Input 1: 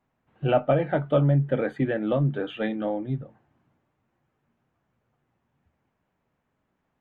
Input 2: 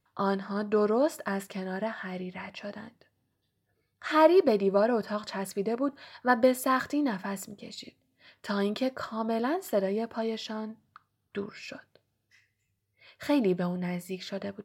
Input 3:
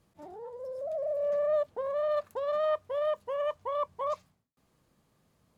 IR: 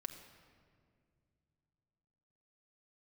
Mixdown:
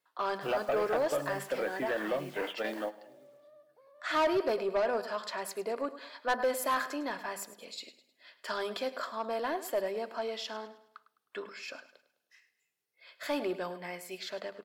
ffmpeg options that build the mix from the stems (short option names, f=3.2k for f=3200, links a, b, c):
-filter_complex "[0:a]acompressor=threshold=-23dB:ratio=6,acrusher=bits=8:mix=0:aa=0.000001,volume=0dB,asplit=3[a][b][c];[b]volume=-21.5dB[d];[c]volume=-22dB[e];[1:a]bandreject=f=50:t=h:w=6,bandreject=f=100:t=h:w=6,bandreject=f=150:t=h:w=6,bandreject=f=200:t=h:w=6,bandreject=f=250:t=h:w=6,volume=0dB,asplit=3[f][g][h];[g]volume=-15dB[i];[2:a]acompressor=threshold=-40dB:ratio=3,adelay=2000,volume=-19.5dB,asplit=2[j][k];[k]volume=-9dB[l];[h]apad=whole_len=309091[m];[a][m]sidechaingate=range=-33dB:threshold=-43dB:ratio=16:detection=peak[n];[3:a]atrim=start_sample=2205[o];[d][o]afir=irnorm=-1:irlink=0[p];[e][i][l]amix=inputs=3:normalize=0,aecho=0:1:104|208|312|416|520:1|0.38|0.144|0.0549|0.0209[q];[n][f][j][p][q]amix=inputs=5:normalize=0,highpass=480,aeval=exprs='(tanh(14.1*val(0)+0.05)-tanh(0.05))/14.1':c=same"